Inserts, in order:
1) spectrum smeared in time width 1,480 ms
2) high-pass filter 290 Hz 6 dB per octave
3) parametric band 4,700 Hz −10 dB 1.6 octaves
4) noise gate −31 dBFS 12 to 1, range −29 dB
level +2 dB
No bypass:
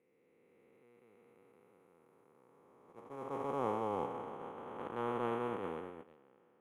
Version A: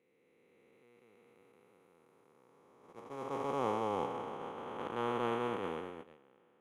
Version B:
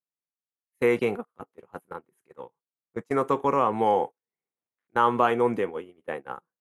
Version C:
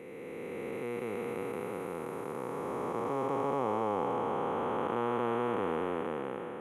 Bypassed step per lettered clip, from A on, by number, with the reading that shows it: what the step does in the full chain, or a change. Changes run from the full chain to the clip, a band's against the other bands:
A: 3, 4 kHz band +6.5 dB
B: 1, 2 kHz band +3.5 dB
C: 4, change in momentary loudness spread −6 LU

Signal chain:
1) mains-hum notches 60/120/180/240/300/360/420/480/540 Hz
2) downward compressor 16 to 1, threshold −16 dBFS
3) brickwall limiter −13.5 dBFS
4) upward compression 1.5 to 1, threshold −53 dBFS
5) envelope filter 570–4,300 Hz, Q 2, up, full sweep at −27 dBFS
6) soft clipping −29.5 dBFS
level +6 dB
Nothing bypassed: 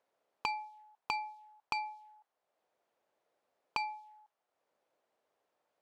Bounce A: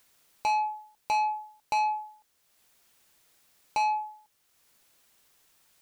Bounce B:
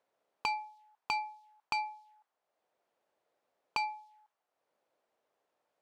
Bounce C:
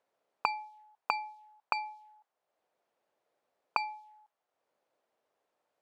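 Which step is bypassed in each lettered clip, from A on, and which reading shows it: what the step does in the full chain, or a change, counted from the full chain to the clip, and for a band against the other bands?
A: 5, 4 kHz band −9.0 dB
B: 2, average gain reduction 1.5 dB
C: 6, distortion level −7 dB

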